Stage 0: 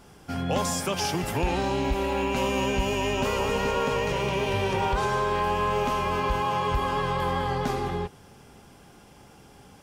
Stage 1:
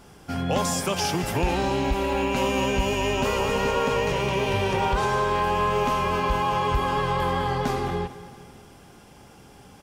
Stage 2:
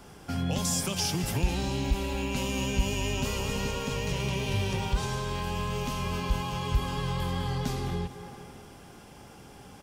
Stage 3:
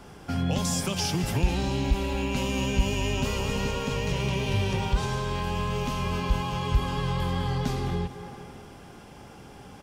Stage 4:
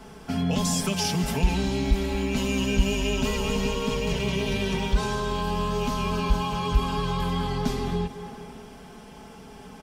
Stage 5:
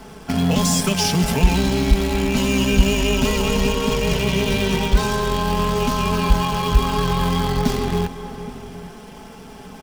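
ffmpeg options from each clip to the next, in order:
ffmpeg -i in.wav -af "aecho=1:1:223|446|669|892:0.158|0.0777|0.0381|0.0186,volume=2dB" out.wav
ffmpeg -i in.wav -filter_complex "[0:a]acrossover=split=230|3000[link_01][link_02][link_03];[link_02]acompressor=threshold=-38dB:ratio=4[link_04];[link_01][link_04][link_03]amix=inputs=3:normalize=0" out.wav
ffmpeg -i in.wav -af "highshelf=frequency=5800:gain=-7,volume=3dB" out.wav
ffmpeg -i in.wav -af "aecho=1:1:4.6:0.78" out.wav
ffmpeg -i in.wav -filter_complex "[0:a]asplit=2[link_01][link_02];[link_02]acrusher=bits=5:dc=4:mix=0:aa=0.000001,volume=-7dB[link_03];[link_01][link_03]amix=inputs=2:normalize=0,asplit=2[link_04][link_05];[link_05]adelay=816.3,volume=-16dB,highshelf=frequency=4000:gain=-18.4[link_06];[link_04][link_06]amix=inputs=2:normalize=0,volume=3.5dB" out.wav

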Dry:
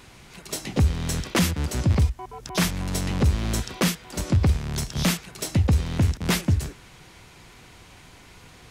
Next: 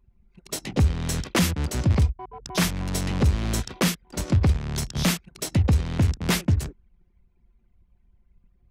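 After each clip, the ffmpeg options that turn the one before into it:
ffmpeg -i in.wav -af "anlmdn=2.51" out.wav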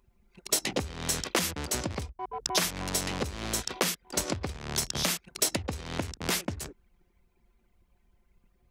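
ffmpeg -i in.wav -af "acompressor=threshold=-28dB:ratio=10,bass=frequency=250:gain=-12,treble=frequency=4000:gain=4,volume=5dB" out.wav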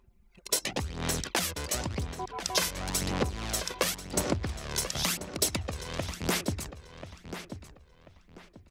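ffmpeg -i in.wav -filter_complex "[0:a]aphaser=in_gain=1:out_gain=1:delay=2:decay=0.48:speed=0.94:type=sinusoidal,asplit=2[link_01][link_02];[link_02]adelay=1038,lowpass=frequency=3900:poles=1,volume=-10dB,asplit=2[link_03][link_04];[link_04]adelay=1038,lowpass=frequency=3900:poles=1,volume=0.29,asplit=2[link_05][link_06];[link_06]adelay=1038,lowpass=frequency=3900:poles=1,volume=0.29[link_07];[link_01][link_03][link_05][link_07]amix=inputs=4:normalize=0,volume=-2dB" out.wav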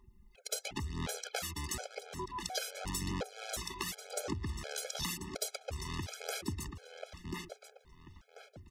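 ffmpeg -i in.wav -af "acompressor=threshold=-37dB:ratio=2.5,afftfilt=real='re*gt(sin(2*PI*1.4*pts/sr)*(1-2*mod(floor(b*sr/1024/430),2)),0)':imag='im*gt(sin(2*PI*1.4*pts/sr)*(1-2*mod(floor(b*sr/1024/430),2)),0)':win_size=1024:overlap=0.75,volume=2dB" out.wav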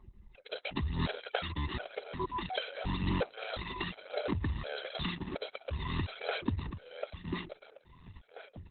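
ffmpeg -i in.wav -af "volume=6.5dB" -ar 48000 -c:a libopus -b:a 8k out.opus

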